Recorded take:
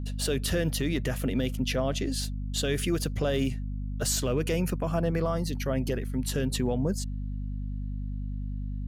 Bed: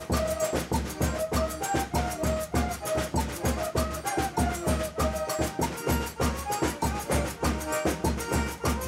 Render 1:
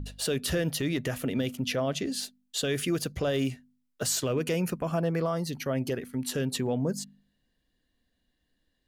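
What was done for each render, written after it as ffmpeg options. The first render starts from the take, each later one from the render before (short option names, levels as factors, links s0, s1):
-af "bandreject=f=50:t=h:w=4,bandreject=f=100:t=h:w=4,bandreject=f=150:t=h:w=4,bandreject=f=200:t=h:w=4,bandreject=f=250:t=h:w=4"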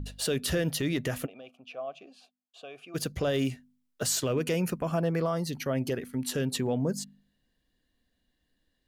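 -filter_complex "[0:a]asplit=3[s0][s1][s2];[s0]afade=t=out:st=1.25:d=0.02[s3];[s1]asplit=3[s4][s5][s6];[s4]bandpass=f=730:t=q:w=8,volume=1[s7];[s5]bandpass=f=1090:t=q:w=8,volume=0.501[s8];[s6]bandpass=f=2440:t=q:w=8,volume=0.355[s9];[s7][s8][s9]amix=inputs=3:normalize=0,afade=t=in:st=1.25:d=0.02,afade=t=out:st=2.94:d=0.02[s10];[s2]afade=t=in:st=2.94:d=0.02[s11];[s3][s10][s11]amix=inputs=3:normalize=0"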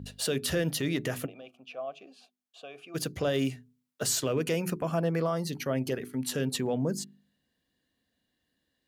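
-af "highpass=89,bandreject=f=60:t=h:w=6,bandreject=f=120:t=h:w=6,bandreject=f=180:t=h:w=6,bandreject=f=240:t=h:w=6,bandreject=f=300:t=h:w=6,bandreject=f=360:t=h:w=6,bandreject=f=420:t=h:w=6"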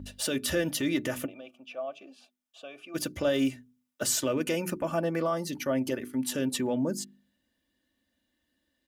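-af "bandreject=f=4300:w=10,aecho=1:1:3.4:0.56"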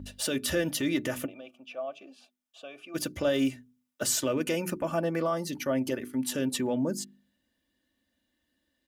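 -af anull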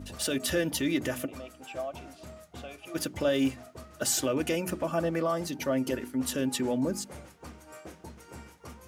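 -filter_complex "[1:a]volume=0.112[s0];[0:a][s0]amix=inputs=2:normalize=0"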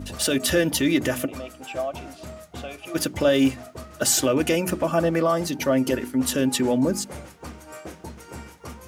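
-af "volume=2.37"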